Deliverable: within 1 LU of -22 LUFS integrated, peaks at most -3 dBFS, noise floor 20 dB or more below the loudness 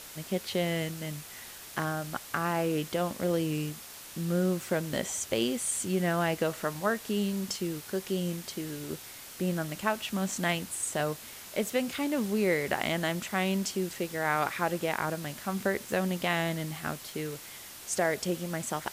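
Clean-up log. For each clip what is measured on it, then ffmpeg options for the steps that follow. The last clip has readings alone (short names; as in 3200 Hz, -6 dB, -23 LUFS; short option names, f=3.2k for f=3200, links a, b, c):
noise floor -46 dBFS; noise floor target -52 dBFS; loudness -31.5 LUFS; peak -13.5 dBFS; loudness target -22.0 LUFS
-> -af "afftdn=nr=6:nf=-46"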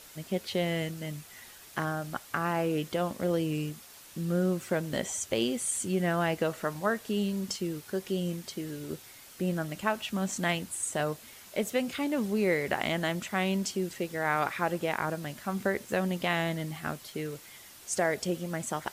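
noise floor -51 dBFS; noise floor target -52 dBFS
-> -af "afftdn=nr=6:nf=-51"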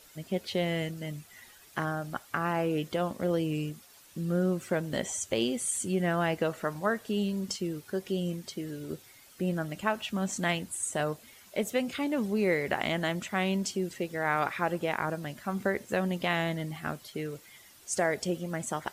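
noise floor -56 dBFS; loudness -31.5 LUFS; peak -14.0 dBFS; loudness target -22.0 LUFS
-> -af "volume=9.5dB"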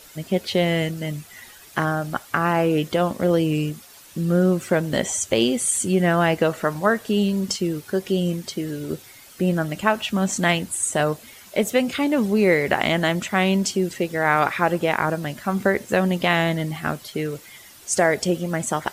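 loudness -22.0 LUFS; peak -4.5 dBFS; noise floor -46 dBFS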